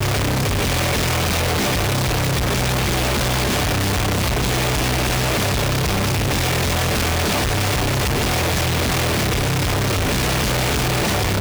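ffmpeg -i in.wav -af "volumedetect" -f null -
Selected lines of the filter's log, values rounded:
mean_volume: -19.1 dB
max_volume: -15.9 dB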